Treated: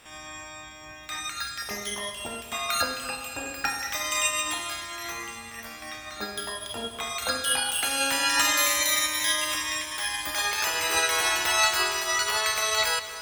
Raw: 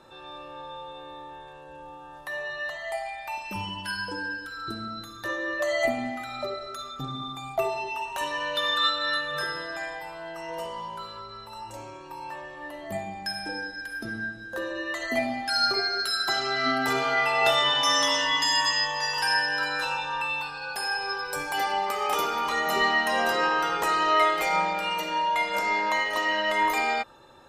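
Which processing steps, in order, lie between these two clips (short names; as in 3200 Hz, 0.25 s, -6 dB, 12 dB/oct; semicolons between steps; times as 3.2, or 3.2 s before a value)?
spectral limiter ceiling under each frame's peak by 15 dB; diffused feedback echo 0.501 s, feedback 66%, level -14 dB; wide varispeed 2.08×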